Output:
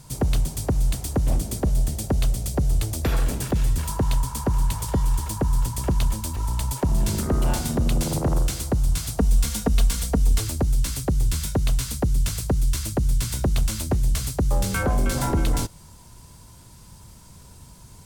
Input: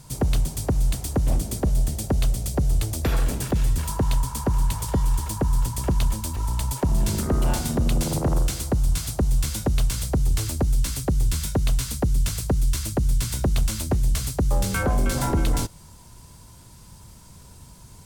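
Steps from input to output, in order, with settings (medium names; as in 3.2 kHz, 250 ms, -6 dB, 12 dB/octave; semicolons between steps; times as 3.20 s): 9.17–10.41 s: comb 4.3 ms, depth 71%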